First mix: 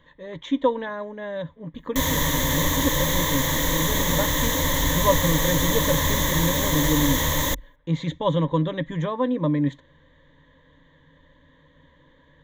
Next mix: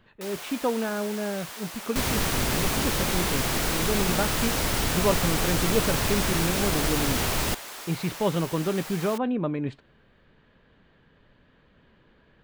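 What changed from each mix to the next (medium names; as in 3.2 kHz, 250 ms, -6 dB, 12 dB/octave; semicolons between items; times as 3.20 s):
first sound: unmuted; master: remove rippled EQ curve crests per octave 1.1, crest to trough 17 dB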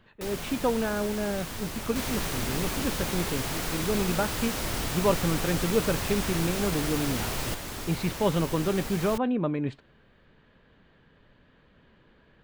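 first sound: remove high-pass 600 Hz 12 dB/octave; second sound -6.5 dB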